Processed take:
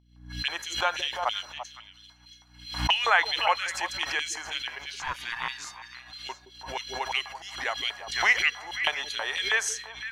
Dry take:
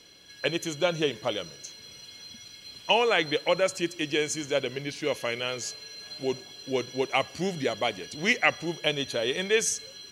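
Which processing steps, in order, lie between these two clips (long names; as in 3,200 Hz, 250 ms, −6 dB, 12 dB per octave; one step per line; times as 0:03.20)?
dynamic equaliser 810 Hz, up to −7 dB, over −39 dBFS, Q 1
auto-filter high-pass square 3.1 Hz 830–3,100 Hz
surface crackle 120 per second −52 dBFS
downward expander −33 dBFS
0:05.00–0:05.95: ring modulation 460 Hz
mains hum 60 Hz, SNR 27 dB
flat-topped bell 1,200 Hz +11.5 dB
on a send: echo through a band-pass that steps 170 ms, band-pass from 290 Hz, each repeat 1.4 octaves, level −5.5 dB
on the sum: background raised ahead of every attack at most 93 dB per second
level −4 dB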